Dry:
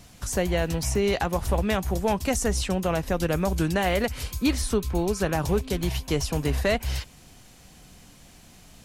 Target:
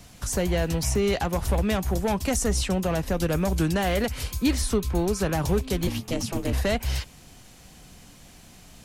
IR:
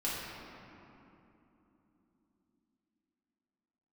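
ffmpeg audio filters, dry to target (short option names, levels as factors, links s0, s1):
-filter_complex "[0:a]acrossover=split=290|4500[s0][s1][s2];[s1]asoftclip=type=tanh:threshold=0.0708[s3];[s0][s3][s2]amix=inputs=3:normalize=0,asettb=1/sr,asplit=3[s4][s5][s6];[s4]atrim=end=5.874[s7];[s5]atrim=start=5.87:end=6.53,asetpts=PTS-STARTPTS,afade=t=in:d=0.004:c=qsin,afade=t=out:st=0.656:d=0.004:c=qsin,aeval=exprs='val(0)*sin(2*PI*170*n/s)':c=same[s8];[s6]atrim=start=6.526[s9];[s7][s8]acrossfade=d=0.004:c1=hsin:c2=qsin[s10];[s10][s9]acrossfade=d=0.004:c1=qsin:c2=hsin,volume=1.19"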